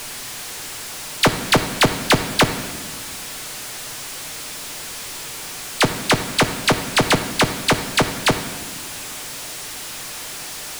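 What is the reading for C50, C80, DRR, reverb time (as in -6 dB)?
10.0 dB, 11.5 dB, 6.5 dB, 1.5 s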